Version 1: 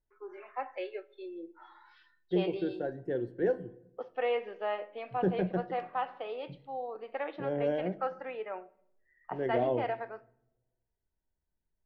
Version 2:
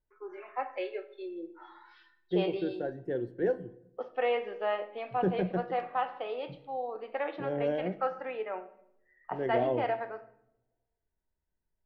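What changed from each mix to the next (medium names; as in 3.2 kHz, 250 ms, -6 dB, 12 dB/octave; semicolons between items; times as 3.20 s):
first voice: send +10.5 dB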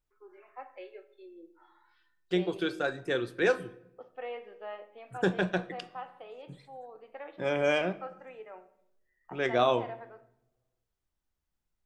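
first voice -10.5 dB; second voice: remove boxcar filter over 36 samples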